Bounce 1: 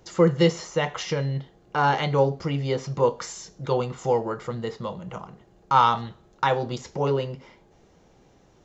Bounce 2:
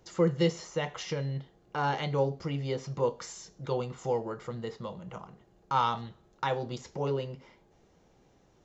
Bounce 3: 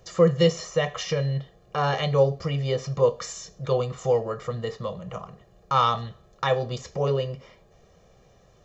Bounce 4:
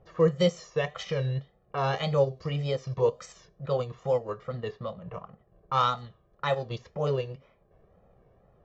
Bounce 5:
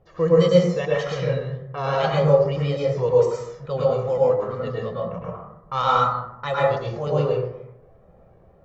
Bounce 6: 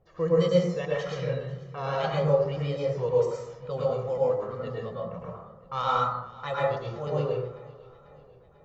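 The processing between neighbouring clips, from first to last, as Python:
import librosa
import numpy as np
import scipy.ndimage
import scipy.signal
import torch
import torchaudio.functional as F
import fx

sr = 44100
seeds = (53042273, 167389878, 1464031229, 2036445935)

y1 = fx.dynamic_eq(x, sr, hz=1200.0, q=0.85, threshold_db=-34.0, ratio=4.0, max_db=-3)
y1 = y1 * 10.0 ** (-6.5 / 20.0)
y2 = y1 + 0.67 * np.pad(y1, (int(1.7 * sr / 1000.0), 0))[:len(y1)]
y2 = y2 * 10.0 ** (5.5 / 20.0)
y3 = fx.wow_flutter(y2, sr, seeds[0], rate_hz=2.1, depth_cents=100.0)
y3 = fx.transient(y3, sr, attack_db=-2, sustain_db=-7)
y3 = fx.env_lowpass(y3, sr, base_hz=1300.0, full_db=-21.0)
y3 = y3 * 10.0 ** (-3.0 / 20.0)
y4 = fx.rev_plate(y3, sr, seeds[1], rt60_s=0.85, hf_ratio=0.35, predelay_ms=95, drr_db=-5.5)
y5 = fx.echo_feedback(y4, sr, ms=493, feedback_pct=57, wet_db=-21)
y5 = y5 * 10.0 ** (-6.5 / 20.0)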